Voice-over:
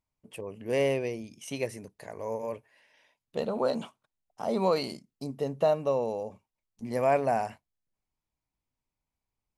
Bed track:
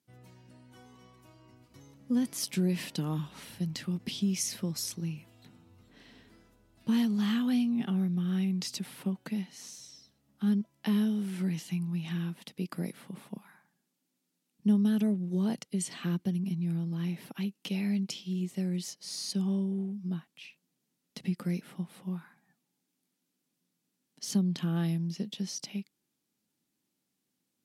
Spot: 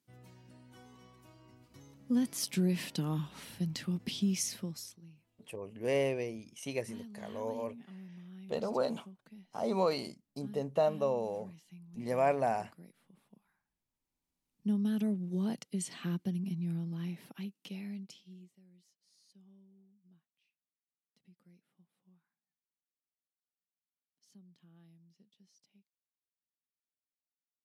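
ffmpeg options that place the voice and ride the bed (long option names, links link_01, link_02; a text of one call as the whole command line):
ffmpeg -i stem1.wav -i stem2.wav -filter_complex "[0:a]adelay=5150,volume=-4dB[link_01];[1:a]volume=14.5dB,afade=type=out:start_time=4.37:duration=0.62:silence=0.11885,afade=type=in:start_time=13.82:duration=1.28:silence=0.158489,afade=type=out:start_time=16.73:duration=1.86:silence=0.0446684[link_02];[link_01][link_02]amix=inputs=2:normalize=0" out.wav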